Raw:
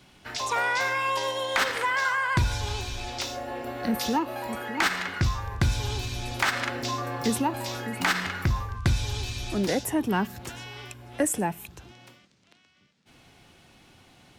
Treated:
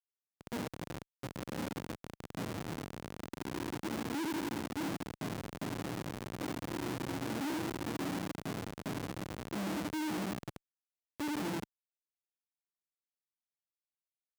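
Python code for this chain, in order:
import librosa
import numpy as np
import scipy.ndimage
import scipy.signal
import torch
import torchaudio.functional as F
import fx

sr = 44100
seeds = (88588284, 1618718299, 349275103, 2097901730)

p1 = fx.lower_of_two(x, sr, delay_ms=6.2)
p2 = fx.formant_cascade(p1, sr, vowel='u')
p3 = 10.0 ** (-35.0 / 20.0) * np.tanh(p2 / 10.0 ** (-35.0 / 20.0))
p4 = p2 + (p3 * librosa.db_to_amplitude(-8.5))
p5 = fx.low_shelf(p4, sr, hz=370.0, db=11.5)
p6 = p5 + fx.echo_feedback(p5, sr, ms=81, feedback_pct=42, wet_db=-4.0, dry=0)
p7 = fx.schmitt(p6, sr, flips_db=-34.0)
p8 = scipy.signal.sosfilt(scipy.signal.butter(2, 150.0, 'highpass', fs=sr, output='sos'), p7)
y = p8 * librosa.db_to_amplitude(-4.0)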